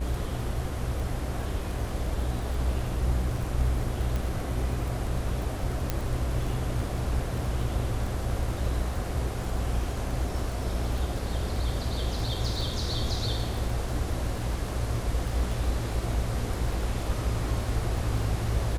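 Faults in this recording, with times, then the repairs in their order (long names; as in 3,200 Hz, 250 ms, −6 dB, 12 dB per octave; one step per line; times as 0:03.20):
mains buzz 60 Hz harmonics 28 −33 dBFS
surface crackle 22 per second −33 dBFS
0:04.16: click
0:05.90: click −12 dBFS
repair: click removal
hum removal 60 Hz, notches 28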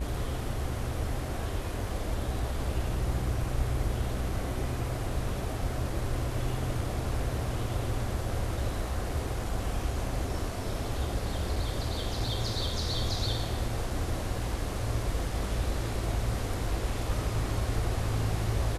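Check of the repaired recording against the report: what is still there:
none of them is left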